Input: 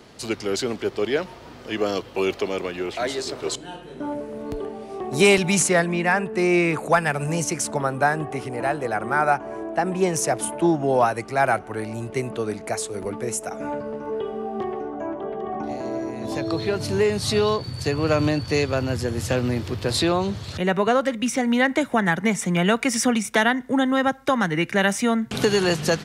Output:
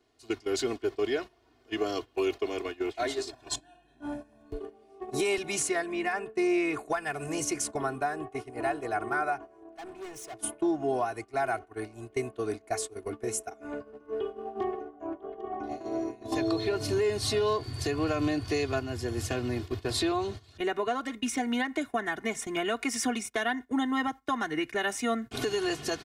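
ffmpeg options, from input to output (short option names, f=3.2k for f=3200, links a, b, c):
-filter_complex "[0:a]asettb=1/sr,asplit=3[a][b][c];[a]atrim=end=3.304[d];[b]atrim=start=3.3:end=4.51,asetpts=PTS-STARTPTS,afade=t=in:d=0.004:c=qsin,afade=t=out:st=1.206:d=0.004:c=qsin,aecho=1:1:1.2:0.85,atrim=end_sample=53361[e];[c]atrim=start=4.506[f];[d][e]acrossfade=d=0.004:c1=hsin:c2=qsin[g];[g][f]acrossfade=d=0.004:c1=qsin:c2=hsin,asettb=1/sr,asplit=3[h][i][j];[h]atrim=end=9.724[k];[i]atrim=start=9.72:end=10.41,asetpts=PTS-STARTPTS,afade=t=in:d=0.004:c=qsin,afade=t=out:st=0.686:d=0.004:c=qsin,asoftclip=type=hard:threshold=-26.5dB[l];[j]atrim=start=10.406[m];[k][l]acrossfade=d=0.004:c1=hsin:c2=qsin[n];[n][m]acrossfade=d=0.004:c1=qsin:c2=hsin,asettb=1/sr,asplit=3[o][p][q];[o]atrim=end=16.324[r];[p]atrim=start=16.32:end=18.8,asetpts=PTS-STARTPTS,afade=t=in:d=0.004:c=qsin,afade=t=out:st=2.476:d=0.004:c=qsin,acontrast=33[s];[q]atrim=start=18.796[t];[r][s]acrossfade=d=0.004:c1=hsin:c2=qsin[u];[u][t]acrossfade=d=0.004:c1=qsin:c2=hsin,agate=range=-17dB:threshold=-28dB:ratio=16:detection=peak,aecho=1:1:2.8:0.88,alimiter=limit=-12dB:level=0:latency=1:release=427,volume=-7.5dB"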